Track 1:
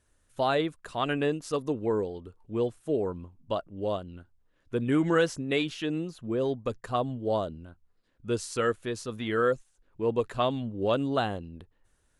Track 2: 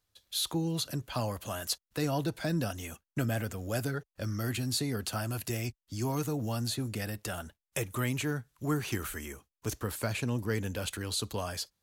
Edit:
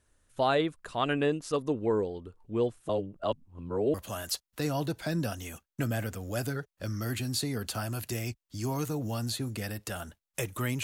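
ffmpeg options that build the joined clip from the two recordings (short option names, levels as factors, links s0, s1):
-filter_complex "[0:a]apad=whole_dur=10.83,atrim=end=10.83,asplit=2[s0][s1];[s0]atrim=end=2.892[s2];[s1]atrim=start=2.888:end=3.942,asetpts=PTS-STARTPTS,areverse[s3];[1:a]atrim=start=1.318:end=8.21[s4];[s2][s3]acrossfade=d=0.004:c1=hsin:c2=hsin[s5];[s5][s4]acrossfade=d=0.004:c1=hsin:c2=hsin"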